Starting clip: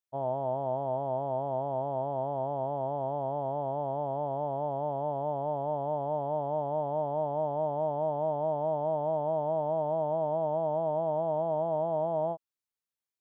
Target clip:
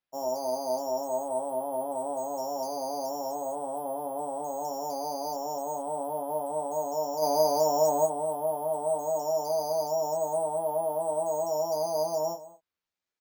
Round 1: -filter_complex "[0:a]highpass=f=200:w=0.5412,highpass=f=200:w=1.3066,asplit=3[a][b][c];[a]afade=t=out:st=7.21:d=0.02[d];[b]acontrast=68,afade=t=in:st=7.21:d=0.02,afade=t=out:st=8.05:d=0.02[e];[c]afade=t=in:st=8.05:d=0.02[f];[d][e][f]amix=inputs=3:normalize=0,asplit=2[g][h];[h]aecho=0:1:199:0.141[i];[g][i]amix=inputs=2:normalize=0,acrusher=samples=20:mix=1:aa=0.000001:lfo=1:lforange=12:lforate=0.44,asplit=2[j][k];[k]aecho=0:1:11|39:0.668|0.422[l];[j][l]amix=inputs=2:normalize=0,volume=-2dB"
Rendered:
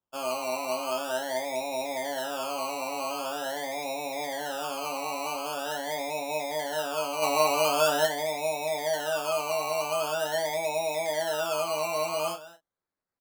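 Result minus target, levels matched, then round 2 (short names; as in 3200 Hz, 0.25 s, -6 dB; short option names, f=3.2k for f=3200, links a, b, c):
decimation with a swept rate: distortion +14 dB
-filter_complex "[0:a]highpass=f=200:w=0.5412,highpass=f=200:w=1.3066,asplit=3[a][b][c];[a]afade=t=out:st=7.21:d=0.02[d];[b]acontrast=68,afade=t=in:st=7.21:d=0.02,afade=t=out:st=8.05:d=0.02[e];[c]afade=t=in:st=8.05:d=0.02[f];[d][e][f]amix=inputs=3:normalize=0,asplit=2[g][h];[h]aecho=0:1:199:0.141[i];[g][i]amix=inputs=2:normalize=0,acrusher=samples=6:mix=1:aa=0.000001:lfo=1:lforange=3.6:lforate=0.44,asplit=2[j][k];[k]aecho=0:1:11|39:0.668|0.422[l];[j][l]amix=inputs=2:normalize=0,volume=-2dB"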